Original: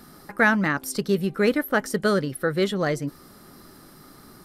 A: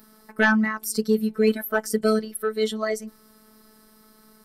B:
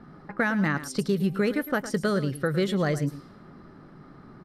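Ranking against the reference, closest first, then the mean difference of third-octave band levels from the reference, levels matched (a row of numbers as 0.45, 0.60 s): B, A; 4.5, 7.5 dB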